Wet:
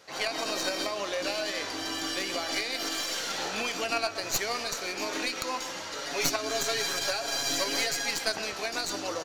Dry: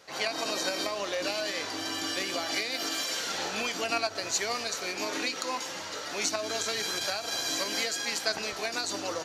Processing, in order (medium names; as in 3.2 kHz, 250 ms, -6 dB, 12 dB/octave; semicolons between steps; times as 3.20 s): tracing distortion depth 0.053 ms; 5.98–8.11 s: comb 7.2 ms, depth 74%; speakerphone echo 130 ms, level -11 dB